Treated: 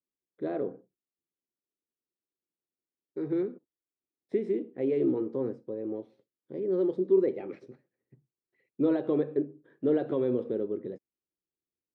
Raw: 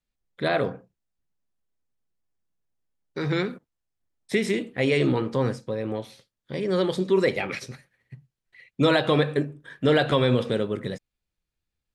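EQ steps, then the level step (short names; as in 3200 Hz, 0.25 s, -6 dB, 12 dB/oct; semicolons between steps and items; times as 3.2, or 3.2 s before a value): band-pass 350 Hz, Q 2.9; 0.0 dB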